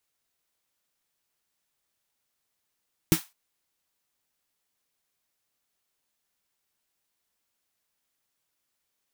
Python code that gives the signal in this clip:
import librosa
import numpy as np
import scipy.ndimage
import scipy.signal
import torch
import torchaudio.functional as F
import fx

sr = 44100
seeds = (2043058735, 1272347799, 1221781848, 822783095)

y = fx.drum_snare(sr, seeds[0], length_s=0.21, hz=170.0, second_hz=320.0, noise_db=-8.5, noise_from_hz=760.0, decay_s=0.09, noise_decay_s=0.25)